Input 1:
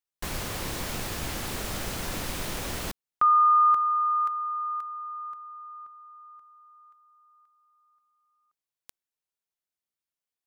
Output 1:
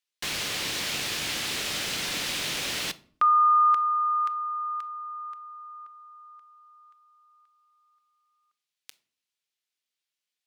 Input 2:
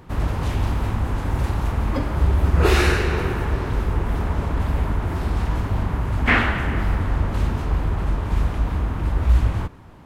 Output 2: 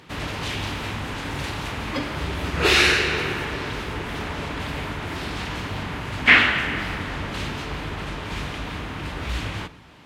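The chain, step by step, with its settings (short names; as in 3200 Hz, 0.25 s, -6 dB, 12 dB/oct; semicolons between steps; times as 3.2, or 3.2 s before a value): weighting filter D; shoebox room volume 650 m³, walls furnished, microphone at 0.41 m; gain -2 dB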